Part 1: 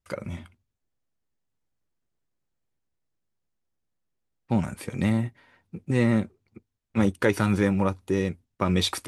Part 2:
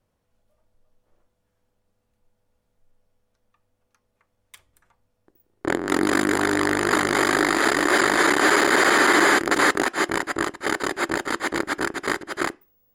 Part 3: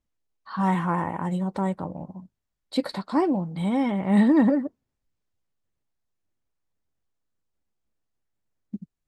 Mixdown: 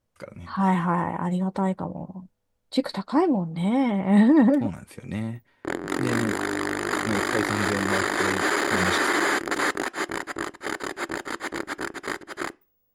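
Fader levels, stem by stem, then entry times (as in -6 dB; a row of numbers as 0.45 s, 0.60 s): -6.5 dB, -6.0 dB, +1.5 dB; 0.10 s, 0.00 s, 0.00 s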